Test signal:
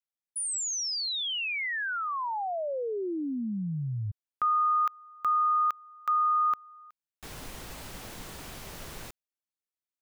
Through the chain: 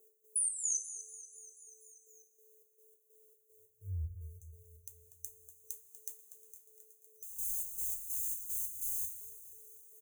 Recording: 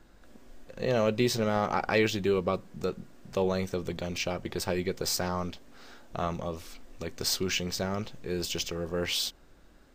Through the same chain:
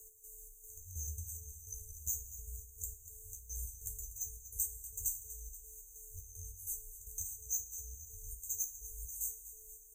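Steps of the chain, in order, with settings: RIAA curve recording; FFT band-reject 130–6100 Hz; low shelf 460 Hz +6.5 dB; compressor 6:1, threshold -36 dBFS; whine 470 Hz -70 dBFS; step gate "x..xxx..x" 189 bpm -12 dB; frequency shift -35 Hz; on a send: feedback echo 0.242 s, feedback 56%, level -14 dB; on the sum: two-slope reverb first 0.23 s, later 1.8 s, from -18 dB, DRR -0.5 dB; mismatched tape noise reduction encoder only

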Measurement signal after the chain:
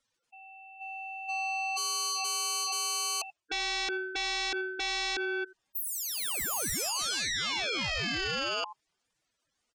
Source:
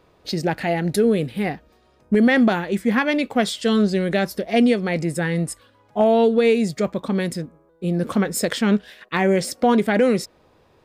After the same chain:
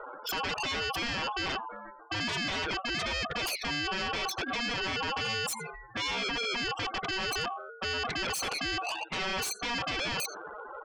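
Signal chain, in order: spectral contrast raised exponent 1.9; LPF 8100 Hz 12 dB/oct; spectral gate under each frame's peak -10 dB strong; bell 3100 Hz -5.5 dB 0.25 oct; reverse; compressor 10:1, threshold -31 dBFS; reverse; limiter -32.5 dBFS; on a send: echo 85 ms -23.5 dB; on the sum: ring modulator 950 Hz; sine folder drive 12 dB, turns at -31.5 dBFS; gain +2.5 dB

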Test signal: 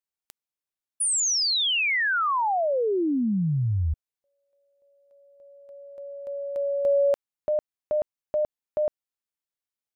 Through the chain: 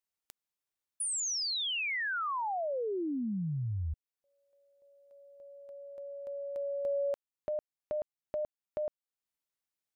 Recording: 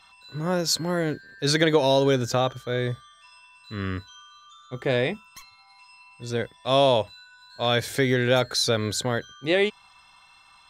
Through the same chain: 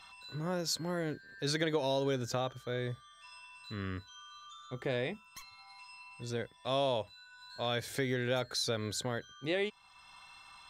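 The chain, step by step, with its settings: compressor 1.5:1, threshold -51 dBFS

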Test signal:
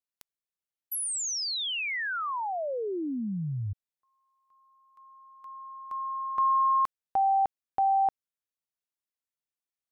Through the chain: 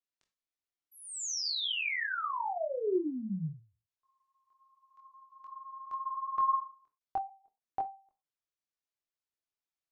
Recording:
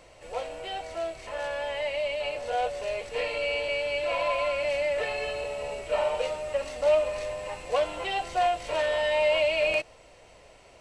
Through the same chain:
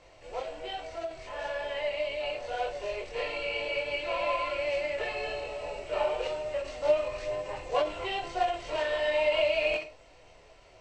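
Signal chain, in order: chorus voices 6, 1.1 Hz, delay 23 ms, depth 3.6 ms; dynamic EQ 370 Hz, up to +7 dB, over -52 dBFS, Q 4.5; LPF 7100 Hz 24 dB/oct; non-linear reverb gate 0.12 s falling, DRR 9.5 dB; ending taper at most 160 dB/s

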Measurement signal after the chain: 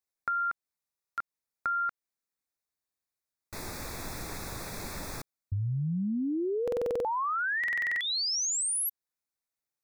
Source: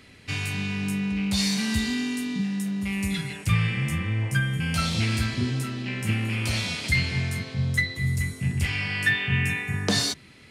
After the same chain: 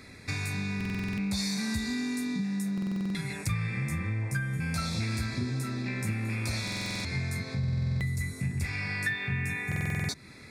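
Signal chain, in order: compressor 3:1, threshold -33 dBFS; Butterworth band-stop 3000 Hz, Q 3.1; stuck buffer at 0.76/2.73/6.63/7.59/9.67, samples 2048, times 8; gain +2.5 dB

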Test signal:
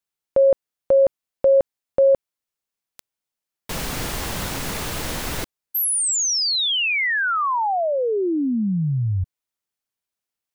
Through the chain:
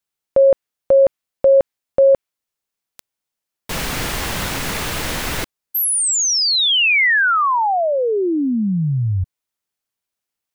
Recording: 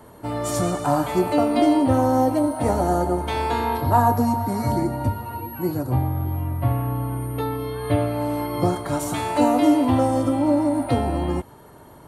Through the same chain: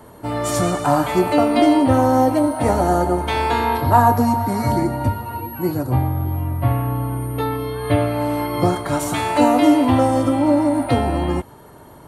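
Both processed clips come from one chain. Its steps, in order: dynamic EQ 2100 Hz, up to +4 dB, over -36 dBFS, Q 0.72; gain +3 dB

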